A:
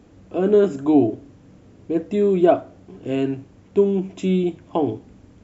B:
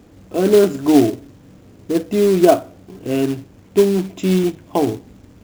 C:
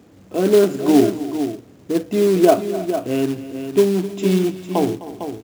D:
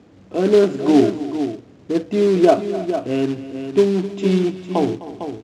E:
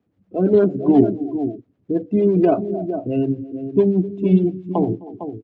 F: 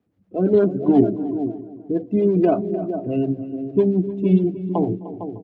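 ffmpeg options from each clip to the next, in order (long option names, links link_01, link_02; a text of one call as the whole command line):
ffmpeg -i in.wav -af "acrusher=bits=4:mode=log:mix=0:aa=0.000001,volume=3.5dB" out.wav
ffmpeg -i in.wav -filter_complex "[0:a]highpass=100,asplit=2[link_01][link_02];[link_02]aecho=0:1:257|313|454:0.15|0.106|0.335[link_03];[link_01][link_03]amix=inputs=2:normalize=0,volume=-1.5dB" out.wav
ffmpeg -i in.wav -af "lowpass=5300" out.wav
ffmpeg -i in.wav -filter_complex "[0:a]afftdn=noise_reduction=21:noise_floor=-27,bass=frequency=250:gain=7,treble=frequency=4000:gain=-8,acrossover=split=430[link_01][link_02];[link_01]aeval=exprs='val(0)*(1-0.7/2+0.7/2*cos(2*PI*8.7*n/s))':channel_layout=same[link_03];[link_02]aeval=exprs='val(0)*(1-0.7/2-0.7/2*cos(2*PI*8.7*n/s))':channel_layout=same[link_04];[link_03][link_04]amix=inputs=2:normalize=0,volume=1dB" out.wav
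ffmpeg -i in.wav -filter_complex "[0:a]asplit=2[link_01][link_02];[link_02]adelay=302,lowpass=frequency=2400:poles=1,volume=-15dB,asplit=2[link_03][link_04];[link_04]adelay=302,lowpass=frequency=2400:poles=1,volume=0.43,asplit=2[link_05][link_06];[link_06]adelay=302,lowpass=frequency=2400:poles=1,volume=0.43,asplit=2[link_07][link_08];[link_08]adelay=302,lowpass=frequency=2400:poles=1,volume=0.43[link_09];[link_01][link_03][link_05][link_07][link_09]amix=inputs=5:normalize=0,volume=-1.5dB" out.wav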